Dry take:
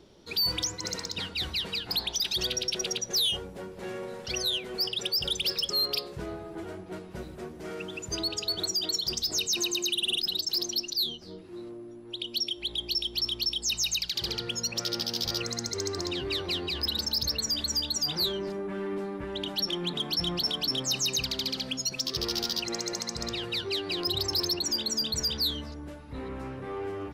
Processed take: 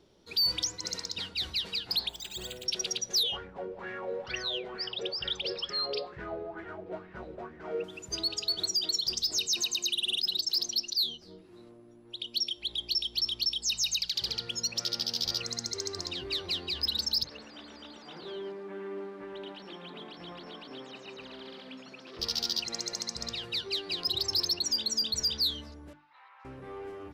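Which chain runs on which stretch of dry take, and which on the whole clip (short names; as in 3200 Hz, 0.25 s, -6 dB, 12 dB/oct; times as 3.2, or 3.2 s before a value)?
2.09–2.66 air absorption 280 m + flutter echo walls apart 9 m, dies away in 0.27 s + careless resampling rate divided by 4×, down filtered, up hold
3.23–7.84 LPF 3200 Hz + LFO bell 2.2 Hz 450–1900 Hz +16 dB
17.24–22.19 delta modulation 64 kbps, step -46.5 dBFS + three-band isolator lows -19 dB, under 200 Hz, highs -21 dB, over 3900 Hz + echo 0.112 s -7 dB
25.93–26.45 elliptic high-pass 840 Hz, stop band 80 dB + air absorption 220 m
whole clip: dynamic EQ 4600 Hz, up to +7 dB, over -41 dBFS, Q 0.96; notches 50/100/150/200/250/300/350 Hz; gain -6.5 dB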